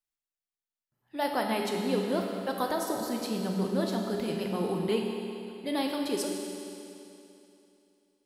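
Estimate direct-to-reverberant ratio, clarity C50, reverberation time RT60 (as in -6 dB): 1.0 dB, 2.5 dB, 2.9 s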